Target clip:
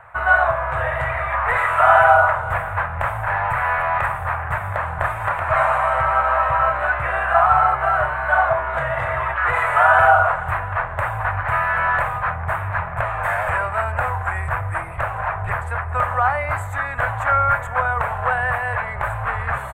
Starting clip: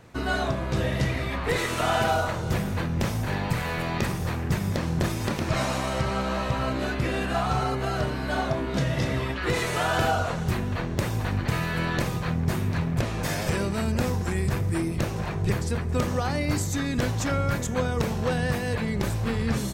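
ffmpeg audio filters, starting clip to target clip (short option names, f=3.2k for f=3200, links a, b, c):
-af "firequalizer=gain_entry='entry(100,0);entry(200,-23);entry(310,-22);entry(630,9);entry(930,13);entry(1400,15);entry(3500,-12);entry(5300,-30);entry(8000,-9)':delay=0.05:min_phase=1,volume=1dB"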